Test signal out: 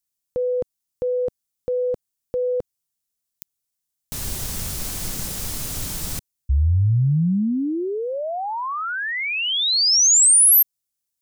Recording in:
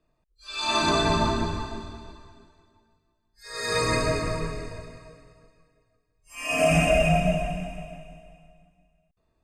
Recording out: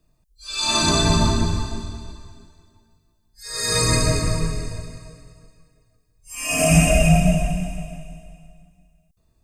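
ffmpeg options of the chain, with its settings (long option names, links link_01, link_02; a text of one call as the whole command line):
ffmpeg -i in.wav -af "bass=frequency=250:gain=10,treble=frequency=4000:gain=14" out.wav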